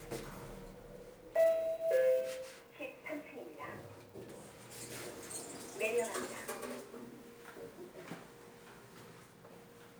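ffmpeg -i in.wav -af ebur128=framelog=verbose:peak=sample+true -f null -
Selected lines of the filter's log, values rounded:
Integrated loudness:
  I:         -37.9 LUFS
  Threshold: -50.2 LUFS
Loudness range:
  LRA:        12.7 LU
  Threshold: -60.5 LUFS
  LRA low:   -49.0 LUFS
  LRA high:  -36.4 LUFS
Sample peak:
  Peak:      -21.1 dBFS
True peak:
  Peak:      -20.9 dBFS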